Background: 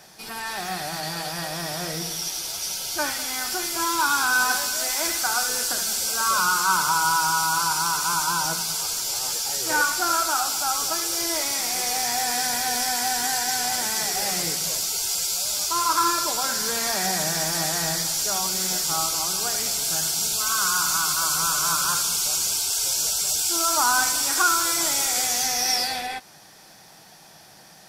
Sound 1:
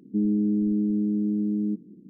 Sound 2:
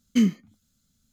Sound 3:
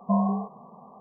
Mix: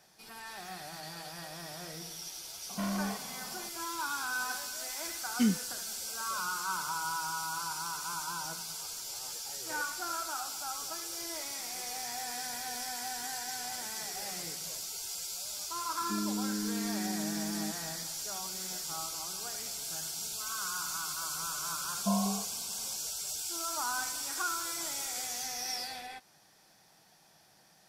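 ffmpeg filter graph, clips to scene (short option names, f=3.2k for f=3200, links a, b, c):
-filter_complex "[3:a]asplit=2[a][b];[0:a]volume=-14dB[c];[a]asoftclip=type=tanh:threshold=-31dB,atrim=end=1,asetpts=PTS-STARTPTS,volume=-1dB,afade=t=in:d=0.004:c=hsin,afade=t=out:st=0.996:d=0.004:c=hsin,adelay=2690[d];[2:a]atrim=end=1.12,asetpts=PTS-STARTPTS,volume=-7.5dB,afade=t=in:d=0.004:c=hsin,afade=t=out:st=1.116:d=0.004:c=hsin,adelay=5240[e];[1:a]atrim=end=2.09,asetpts=PTS-STARTPTS,volume=-11.5dB,afade=t=in:d=0.004:c=hsin,afade=t=out:st=2.086:d=0.004:c=hsin,adelay=15960[f];[b]atrim=end=1,asetpts=PTS-STARTPTS,volume=-7dB,afade=t=in:d=0.004:c=hsin,afade=t=out:st=0.996:d=0.004:c=hsin,adelay=21970[g];[c][d][e][f][g]amix=inputs=5:normalize=0"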